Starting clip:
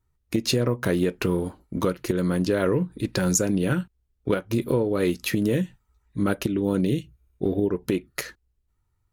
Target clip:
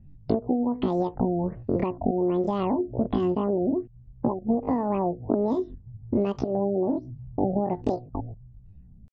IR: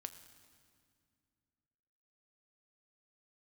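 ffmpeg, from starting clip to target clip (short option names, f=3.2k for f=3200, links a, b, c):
-filter_complex "[0:a]aemphasis=mode=reproduction:type=riaa,acrossover=split=4400[a][b];[b]acompressor=threshold=-56dB:ratio=4:attack=1:release=60[c];[a][c]amix=inputs=2:normalize=0,lowshelf=f=350:g=7.5,acompressor=threshold=-19dB:ratio=16,asetrate=88200,aresample=44100,atempo=0.5,afftfilt=real='re*lt(b*sr/1024,760*pow(8000/760,0.5+0.5*sin(2*PI*1.3*pts/sr)))':imag='im*lt(b*sr/1024,760*pow(8000/760,0.5+0.5*sin(2*PI*1.3*pts/sr)))':win_size=1024:overlap=0.75,volume=-1.5dB"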